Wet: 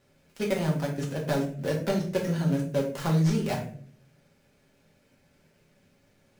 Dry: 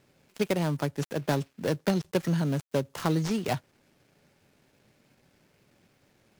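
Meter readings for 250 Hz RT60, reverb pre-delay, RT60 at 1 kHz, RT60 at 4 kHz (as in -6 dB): 0.80 s, 4 ms, 0.40 s, 0.35 s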